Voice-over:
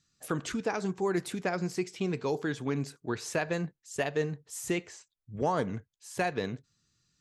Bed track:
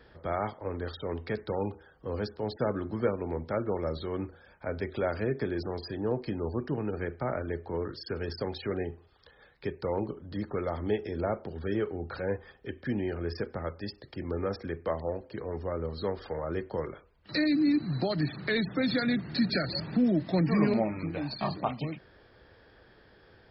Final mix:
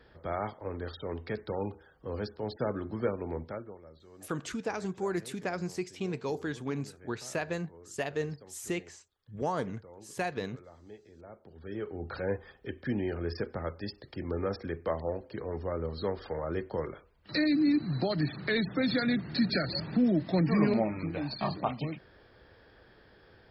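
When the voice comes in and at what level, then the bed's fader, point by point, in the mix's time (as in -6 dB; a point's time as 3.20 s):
4.00 s, -3.0 dB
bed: 3.42 s -2.5 dB
3.82 s -20.5 dB
11.23 s -20.5 dB
12.08 s -0.5 dB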